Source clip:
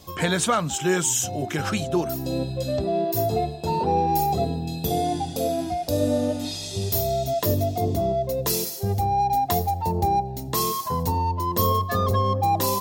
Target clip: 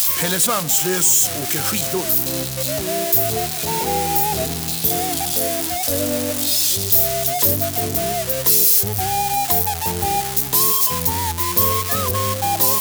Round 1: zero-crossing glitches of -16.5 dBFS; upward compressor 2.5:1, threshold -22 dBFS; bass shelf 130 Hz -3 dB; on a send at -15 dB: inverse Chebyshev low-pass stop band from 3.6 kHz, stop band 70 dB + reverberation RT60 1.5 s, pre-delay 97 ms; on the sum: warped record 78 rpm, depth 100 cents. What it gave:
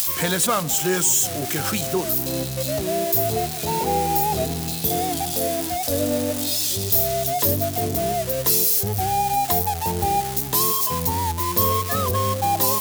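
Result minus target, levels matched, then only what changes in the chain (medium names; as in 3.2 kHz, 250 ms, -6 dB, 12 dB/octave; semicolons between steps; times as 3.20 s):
zero-crossing glitches: distortion -5 dB
change: zero-crossing glitches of -10.5 dBFS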